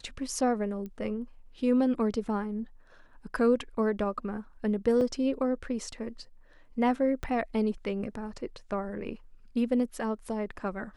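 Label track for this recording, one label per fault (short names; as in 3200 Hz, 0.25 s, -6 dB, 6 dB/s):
0.860000	0.860000	pop -29 dBFS
5.010000	5.010000	gap 2.1 ms
7.230000	7.230000	pop -22 dBFS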